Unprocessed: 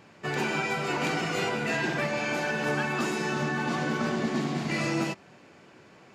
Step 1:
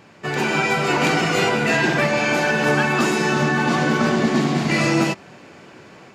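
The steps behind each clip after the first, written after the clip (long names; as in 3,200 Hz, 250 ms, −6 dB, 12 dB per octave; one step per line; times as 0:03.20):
automatic gain control gain up to 4.5 dB
level +5.5 dB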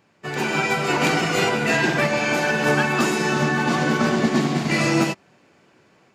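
high-shelf EQ 9,100 Hz +5 dB
expander for the loud parts 1.5 to 1, over −41 dBFS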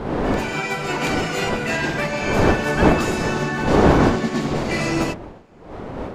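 wind on the microphone 540 Hz −19 dBFS
level −3 dB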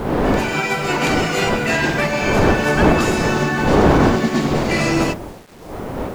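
in parallel at +2.5 dB: brickwall limiter −11.5 dBFS, peak gain reduction 10 dB
on the sum: bit reduction 7 bits
level −3 dB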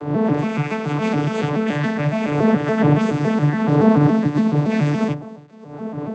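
vocoder with an arpeggio as carrier bare fifth, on D3, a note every 141 ms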